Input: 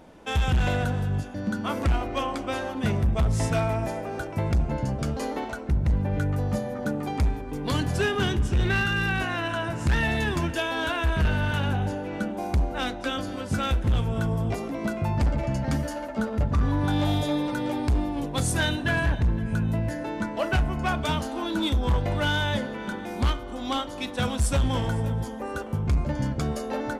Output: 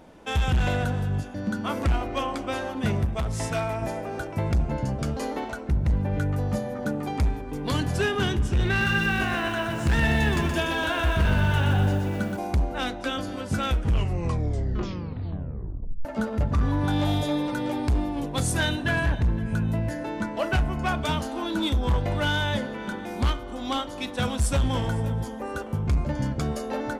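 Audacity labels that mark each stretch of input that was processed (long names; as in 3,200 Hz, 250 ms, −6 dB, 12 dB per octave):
3.050000	3.820000	low-shelf EQ 390 Hz −6 dB
8.680000	12.370000	feedback echo at a low word length 123 ms, feedback 55%, word length 8 bits, level −5 dB
13.660000	13.660000	tape stop 2.39 s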